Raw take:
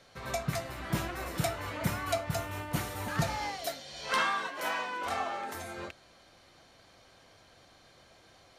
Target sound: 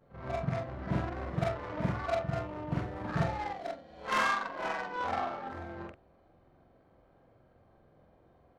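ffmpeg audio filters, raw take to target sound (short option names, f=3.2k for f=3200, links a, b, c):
-af "afftfilt=real='re':imag='-im':win_size=4096:overlap=0.75,adynamicsmooth=sensitivity=4.5:basefreq=780,volume=5.5dB"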